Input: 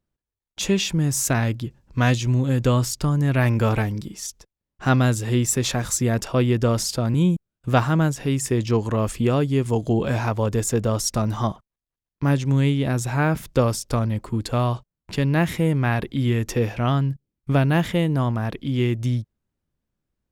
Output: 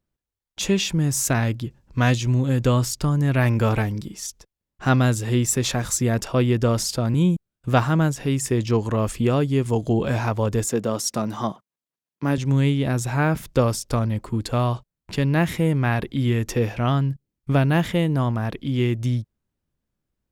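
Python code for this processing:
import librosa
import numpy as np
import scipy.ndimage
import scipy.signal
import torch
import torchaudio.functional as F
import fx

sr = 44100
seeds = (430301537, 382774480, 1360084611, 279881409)

y = fx.cheby1_highpass(x, sr, hz=200.0, order=2, at=(10.65, 12.38))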